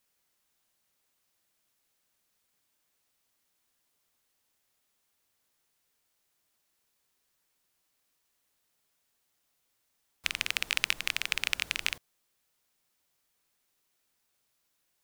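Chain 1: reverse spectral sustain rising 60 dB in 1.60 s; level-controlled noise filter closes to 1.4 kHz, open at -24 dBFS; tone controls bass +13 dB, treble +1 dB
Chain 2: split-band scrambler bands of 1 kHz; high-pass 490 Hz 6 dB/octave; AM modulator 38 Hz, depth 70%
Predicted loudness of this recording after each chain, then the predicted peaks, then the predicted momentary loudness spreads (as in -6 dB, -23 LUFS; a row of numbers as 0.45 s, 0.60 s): -24.5 LUFS, -34.5 LUFS; -1.5 dBFS, -5.5 dBFS; 10 LU, 7 LU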